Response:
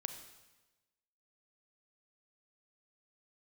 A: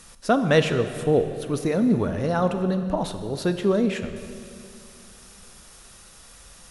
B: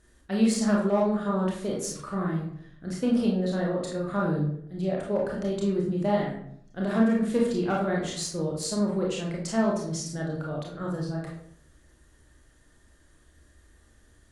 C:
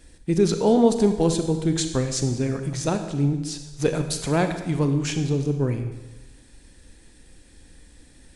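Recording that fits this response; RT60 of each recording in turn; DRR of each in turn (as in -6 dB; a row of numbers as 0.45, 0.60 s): C; 2.5, 0.65, 1.1 s; 8.5, -3.0, 7.5 dB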